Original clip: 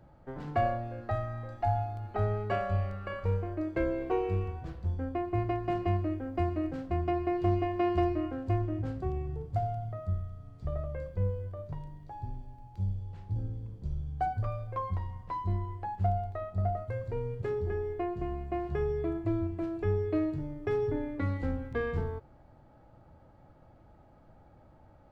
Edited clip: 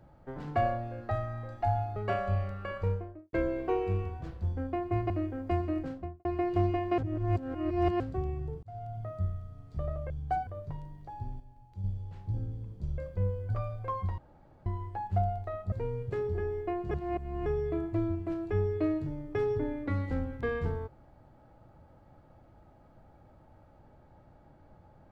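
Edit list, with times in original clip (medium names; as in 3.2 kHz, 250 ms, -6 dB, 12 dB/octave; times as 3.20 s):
1.96–2.38 s: delete
3.22–3.75 s: studio fade out
5.52–5.98 s: delete
6.70–7.13 s: studio fade out
7.86–8.88 s: reverse
9.51–9.94 s: fade in linear
10.98–11.49 s: swap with 14.00–14.37 s
12.42–12.86 s: gain -6.5 dB
15.06–15.54 s: room tone
16.60–17.04 s: delete
18.23–18.78 s: reverse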